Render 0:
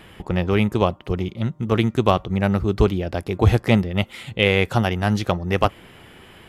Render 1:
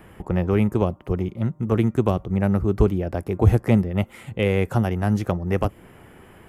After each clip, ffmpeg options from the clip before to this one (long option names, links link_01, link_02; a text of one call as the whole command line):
ffmpeg -i in.wav -filter_complex "[0:a]equalizer=frequency=3800:width=0.97:gain=-14.5,acrossover=split=470|3000[link_01][link_02][link_03];[link_02]acompressor=threshold=-26dB:ratio=6[link_04];[link_01][link_04][link_03]amix=inputs=3:normalize=0" out.wav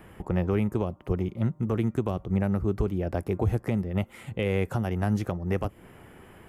ffmpeg -i in.wav -af "alimiter=limit=-13.5dB:level=0:latency=1:release=238,volume=-2.5dB" out.wav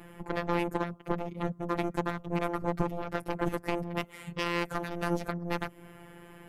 ffmpeg -i in.wav -af "aeval=exprs='0.168*(cos(1*acos(clip(val(0)/0.168,-1,1)))-cos(1*PI/2))+0.075*(cos(3*acos(clip(val(0)/0.168,-1,1)))-cos(3*PI/2))+0.015*(cos(7*acos(clip(val(0)/0.168,-1,1)))-cos(7*PI/2))':channel_layout=same,afftfilt=real='hypot(re,im)*cos(PI*b)':imag='0':win_size=1024:overlap=0.75,volume=3.5dB" out.wav